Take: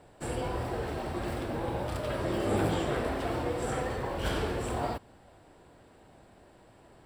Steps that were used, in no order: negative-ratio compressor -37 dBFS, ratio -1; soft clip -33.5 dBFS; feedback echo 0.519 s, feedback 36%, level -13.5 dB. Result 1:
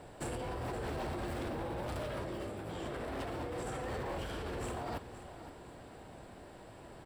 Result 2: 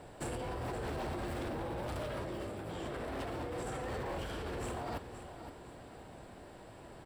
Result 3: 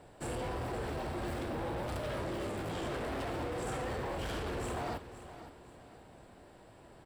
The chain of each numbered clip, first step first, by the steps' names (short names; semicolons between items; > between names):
negative-ratio compressor > soft clip > feedback echo; negative-ratio compressor > feedback echo > soft clip; soft clip > negative-ratio compressor > feedback echo